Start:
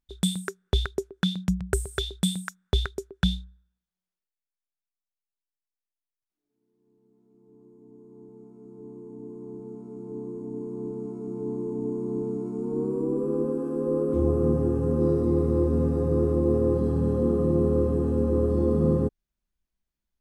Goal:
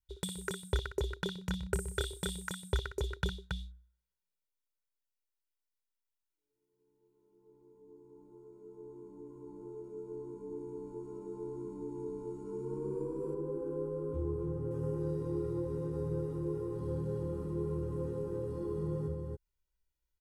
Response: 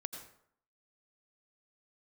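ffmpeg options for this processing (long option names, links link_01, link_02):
-af "aemphasis=mode=production:type=50kf,acompressor=threshold=-25dB:ratio=3,aecho=1:1:2.1:0.89,aecho=1:1:58.31|277:0.355|0.631,adynamicequalizer=threshold=0.0126:dfrequency=530:dqfactor=0.83:tfrequency=530:tqfactor=0.83:attack=5:release=100:ratio=0.375:range=3.5:mode=cutabove:tftype=bell,asetnsamples=nb_out_samples=441:pad=0,asendcmd='13.34 lowpass f 1100;14.71 lowpass f 3100',lowpass=frequency=3100:poles=1,volume=-7.5dB"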